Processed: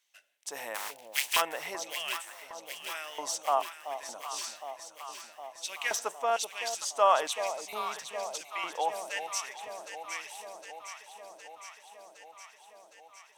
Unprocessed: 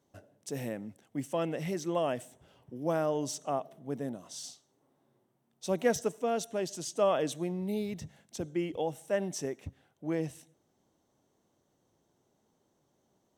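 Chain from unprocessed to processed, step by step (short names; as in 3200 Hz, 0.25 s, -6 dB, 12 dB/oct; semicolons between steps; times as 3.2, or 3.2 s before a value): 0.74–1.4 spectral contrast lowered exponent 0.31; LFO high-pass square 1.1 Hz 950–2400 Hz; echo with dull and thin repeats by turns 0.381 s, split 880 Hz, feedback 83%, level -8.5 dB; gain +4.5 dB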